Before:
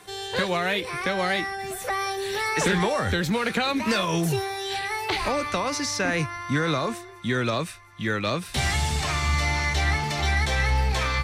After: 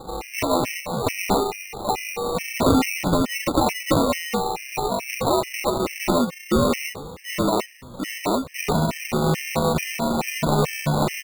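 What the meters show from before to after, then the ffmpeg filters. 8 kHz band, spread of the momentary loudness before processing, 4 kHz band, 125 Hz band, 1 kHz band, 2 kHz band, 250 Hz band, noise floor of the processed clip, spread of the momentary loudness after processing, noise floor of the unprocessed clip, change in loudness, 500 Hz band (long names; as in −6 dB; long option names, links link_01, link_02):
+2.0 dB, 6 LU, −1.5 dB, 0.0 dB, +3.0 dB, −4.0 dB, +6.0 dB, −40 dBFS, 6 LU, −42 dBFS, +2.0 dB, +4.5 dB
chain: -filter_complex "[0:a]aresample=16000,aeval=exprs='sgn(val(0))*max(abs(val(0))-0.00158,0)':channel_layout=same,aresample=44100,acompressor=mode=upward:threshold=-35dB:ratio=2.5,afreqshift=85,aecho=1:1:3.4:0.3,acrusher=samples=27:mix=1:aa=0.000001,asplit=2[link_01][link_02];[link_02]asplit=5[link_03][link_04][link_05][link_06][link_07];[link_03]adelay=461,afreqshift=-83,volume=-22dB[link_08];[link_04]adelay=922,afreqshift=-166,volume=-26.2dB[link_09];[link_05]adelay=1383,afreqshift=-249,volume=-30.3dB[link_10];[link_06]adelay=1844,afreqshift=-332,volume=-34.5dB[link_11];[link_07]adelay=2305,afreqshift=-415,volume=-38.6dB[link_12];[link_08][link_09][link_10][link_11][link_12]amix=inputs=5:normalize=0[link_13];[link_01][link_13]amix=inputs=2:normalize=0,afftfilt=real='re*gt(sin(2*PI*2.3*pts/sr)*(1-2*mod(floor(b*sr/1024/1600),2)),0)':imag='im*gt(sin(2*PI*2.3*pts/sr)*(1-2*mod(floor(b*sr/1024/1600),2)),0)':win_size=1024:overlap=0.75,volume=5.5dB"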